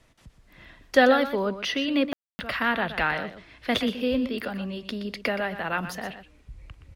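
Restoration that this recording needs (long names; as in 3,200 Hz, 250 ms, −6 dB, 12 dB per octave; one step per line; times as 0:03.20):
ambience match 0:02.13–0:02.39
echo removal 122 ms −11.5 dB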